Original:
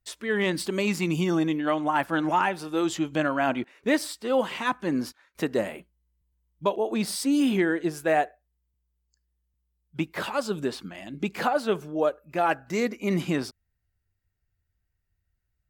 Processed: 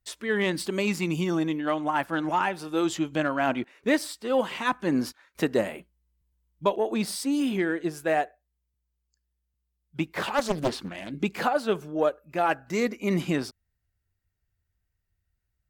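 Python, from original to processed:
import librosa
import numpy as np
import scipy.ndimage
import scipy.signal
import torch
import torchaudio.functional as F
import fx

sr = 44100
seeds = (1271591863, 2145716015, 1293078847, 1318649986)

y = fx.cheby_harmonics(x, sr, harmonics=(7,), levels_db=(-36,), full_scale_db=-10.0)
y = fx.rider(y, sr, range_db=4, speed_s=0.5)
y = fx.doppler_dist(y, sr, depth_ms=0.96, at=(10.05, 11.11))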